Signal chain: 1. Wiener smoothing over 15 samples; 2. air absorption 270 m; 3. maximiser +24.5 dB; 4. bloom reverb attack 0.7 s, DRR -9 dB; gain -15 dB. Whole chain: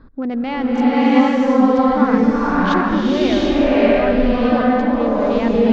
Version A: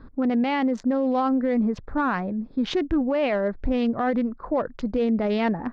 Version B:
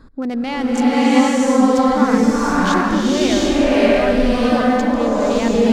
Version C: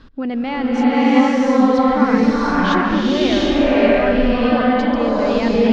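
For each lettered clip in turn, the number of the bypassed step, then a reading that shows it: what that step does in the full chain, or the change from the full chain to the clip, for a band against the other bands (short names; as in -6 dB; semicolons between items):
4, momentary loudness spread change +1 LU; 2, 4 kHz band +4.0 dB; 1, 4 kHz band +3.5 dB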